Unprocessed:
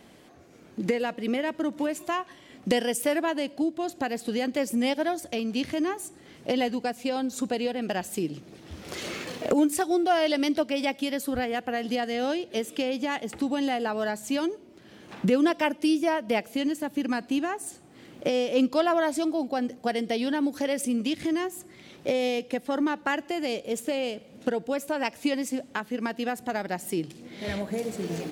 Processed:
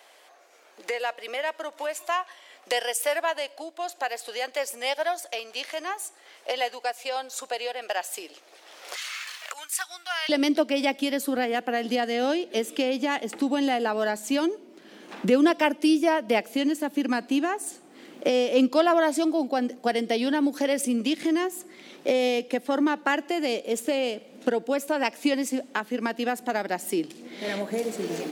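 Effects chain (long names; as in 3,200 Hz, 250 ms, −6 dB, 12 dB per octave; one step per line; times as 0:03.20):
high-pass filter 570 Hz 24 dB per octave, from 0:08.96 1,200 Hz, from 0:10.29 220 Hz
level +3 dB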